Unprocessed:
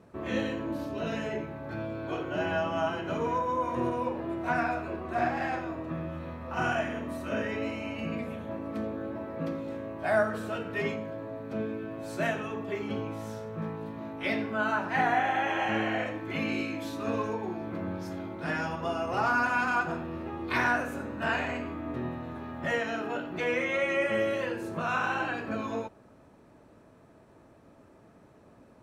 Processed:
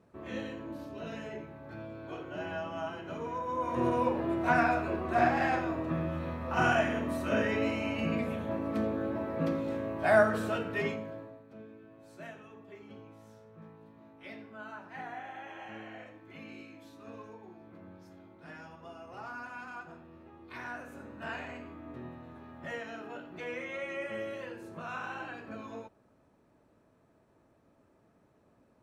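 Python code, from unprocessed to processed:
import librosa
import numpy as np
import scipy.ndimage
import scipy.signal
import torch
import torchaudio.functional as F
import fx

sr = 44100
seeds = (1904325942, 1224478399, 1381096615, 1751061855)

y = fx.gain(x, sr, db=fx.line((3.33, -8.0), (3.96, 2.5), (10.44, 2.5), (11.18, -5.0), (11.46, -16.5), (20.58, -16.5), (21.05, -10.0)))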